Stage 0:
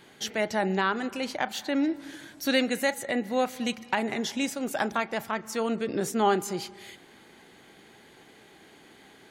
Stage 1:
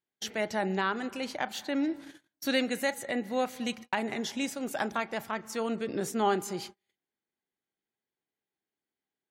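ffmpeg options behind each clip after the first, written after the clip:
-af "agate=range=-37dB:threshold=-40dB:ratio=16:detection=peak,volume=-3.5dB"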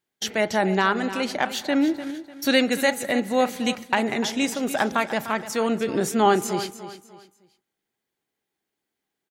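-af "aecho=1:1:298|596|894:0.224|0.0716|0.0229,volume=8.5dB"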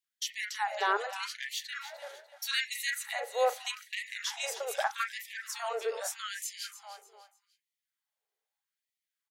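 -filter_complex "[0:a]acrossover=split=2100[a][b];[a]adelay=40[c];[c][b]amix=inputs=2:normalize=0,afftfilt=real='re*gte(b*sr/1024,380*pow(1800/380,0.5+0.5*sin(2*PI*0.81*pts/sr)))':imag='im*gte(b*sr/1024,380*pow(1800/380,0.5+0.5*sin(2*PI*0.81*pts/sr)))':win_size=1024:overlap=0.75,volume=-5.5dB"

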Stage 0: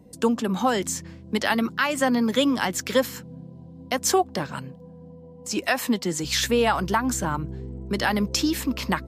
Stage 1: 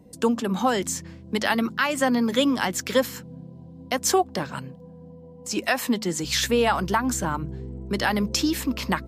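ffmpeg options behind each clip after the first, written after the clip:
-af "bandreject=f=72.79:t=h:w=4,bandreject=f=145.58:t=h:w=4,bandreject=f=218.37:t=h:w=4"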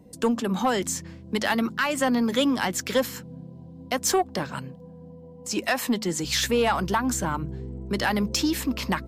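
-af "asoftclip=type=tanh:threshold=-13.5dB"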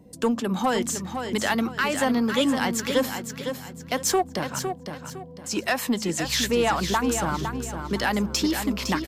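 -af "aecho=1:1:508|1016|1524|2032:0.422|0.131|0.0405|0.0126"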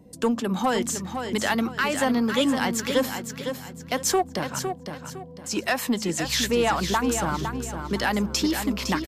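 -af "aresample=32000,aresample=44100"

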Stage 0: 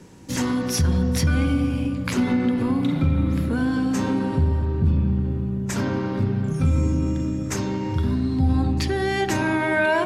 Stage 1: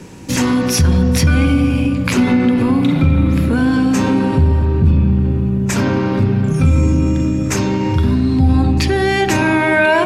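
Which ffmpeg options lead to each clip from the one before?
-filter_complex "[0:a]equalizer=f=2.5k:w=5.6:g=5.5,asplit=2[a][b];[b]alimiter=limit=-21.5dB:level=0:latency=1,volume=-1dB[c];[a][c]amix=inputs=2:normalize=0,volume=5dB"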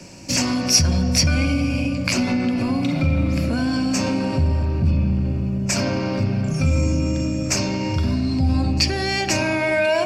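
-filter_complex "[0:a]superequalizer=7b=0.631:8b=2.51:12b=2:14b=3.98:15b=2.24,acrossover=split=170|3000[a][b][c];[b]acompressor=threshold=-14dB:ratio=2[d];[a][d][c]amix=inputs=3:normalize=0,volume=-6.5dB"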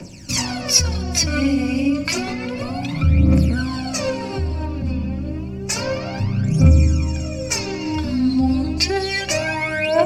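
-af "aphaser=in_gain=1:out_gain=1:delay=4.1:decay=0.71:speed=0.3:type=triangular,volume=-3dB"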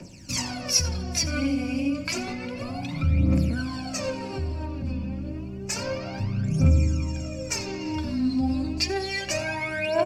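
-af "aecho=1:1:87:0.133,volume=-7dB"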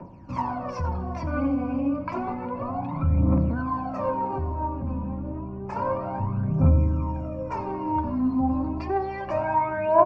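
-af "lowpass=f=1k:t=q:w=5.4"

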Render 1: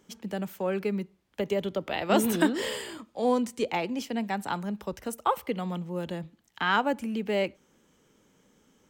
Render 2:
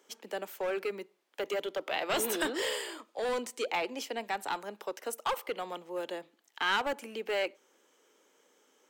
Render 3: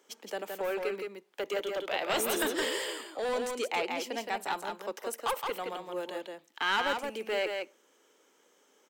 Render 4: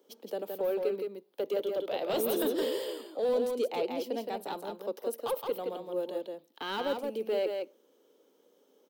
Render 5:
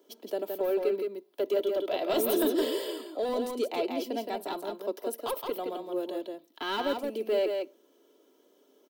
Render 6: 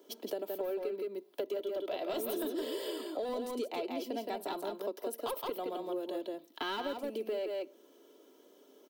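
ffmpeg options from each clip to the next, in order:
-filter_complex "[0:a]highpass=f=360:w=0.5412,highpass=f=360:w=1.3066,acrossover=split=1700[a][b];[a]asoftclip=type=hard:threshold=-29.5dB[c];[c][b]amix=inputs=2:normalize=0"
-af "aecho=1:1:168:0.596"
-af "equalizer=f=125:t=o:w=1:g=12,equalizer=f=250:t=o:w=1:g=8,equalizer=f=500:t=o:w=1:g=11,equalizer=f=2k:t=o:w=1:g=-7,equalizer=f=4k:t=o:w=1:g=7,equalizer=f=8k:t=o:w=1:g=-6,aexciter=amount=2.5:drive=6.6:freq=9.4k,equalizer=f=86:w=1.2:g=-6.5,volume=-8dB"
-af "aecho=1:1:3:0.55,volume=2dB"
-af "acompressor=threshold=-37dB:ratio=6,volume=3dB"

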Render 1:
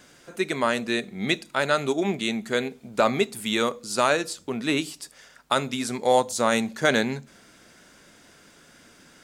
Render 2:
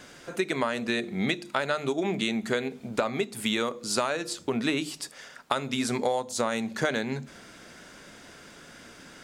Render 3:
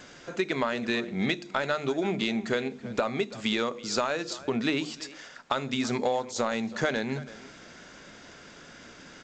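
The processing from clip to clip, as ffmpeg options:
-af "highshelf=f=7.1k:g=-6.5,bandreject=f=50:t=h:w=6,bandreject=f=100:t=h:w=6,bandreject=f=150:t=h:w=6,bandreject=f=200:t=h:w=6,bandreject=f=250:t=h:w=6,bandreject=f=300:t=h:w=6,bandreject=f=350:t=h:w=6,acompressor=threshold=-29dB:ratio=10,volume=5.5dB"
-filter_complex "[0:a]asoftclip=type=tanh:threshold=-11dB,asplit=2[a][b];[b]adelay=330,highpass=300,lowpass=3.4k,asoftclip=type=hard:threshold=-21.5dB,volume=-16dB[c];[a][c]amix=inputs=2:normalize=0" -ar 16000 -c:a g722

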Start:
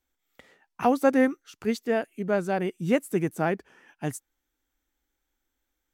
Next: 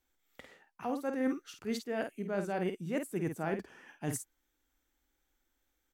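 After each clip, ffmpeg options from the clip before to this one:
-filter_complex "[0:a]areverse,acompressor=threshold=-31dB:ratio=12,areverse,asplit=2[a][b];[b]adelay=50,volume=-7dB[c];[a][c]amix=inputs=2:normalize=0"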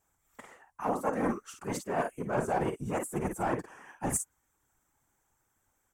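-af "aeval=exprs='clip(val(0),-1,0.0251)':c=same,equalizer=f=1k:t=o:w=1:g=11,equalizer=f=4k:t=o:w=1:g=-10,equalizer=f=8k:t=o:w=1:g=11,afftfilt=real='hypot(re,im)*cos(2*PI*random(0))':imag='hypot(re,im)*sin(2*PI*random(1))':win_size=512:overlap=0.75,volume=7.5dB"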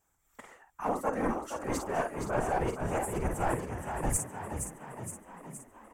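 -filter_complex "[0:a]asubboost=boost=7.5:cutoff=72,asplit=2[a][b];[b]asplit=8[c][d][e][f][g][h][i][j];[c]adelay=468,afreqshift=41,volume=-7dB[k];[d]adelay=936,afreqshift=82,volume=-11.6dB[l];[e]adelay=1404,afreqshift=123,volume=-16.2dB[m];[f]adelay=1872,afreqshift=164,volume=-20.7dB[n];[g]adelay=2340,afreqshift=205,volume=-25.3dB[o];[h]adelay=2808,afreqshift=246,volume=-29.9dB[p];[i]adelay=3276,afreqshift=287,volume=-34.5dB[q];[j]adelay=3744,afreqshift=328,volume=-39.1dB[r];[k][l][m][n][o][p][q][r]amix=inputs=8:normalize=0[s];[a][s]amix=inputs=2:normalize=0"

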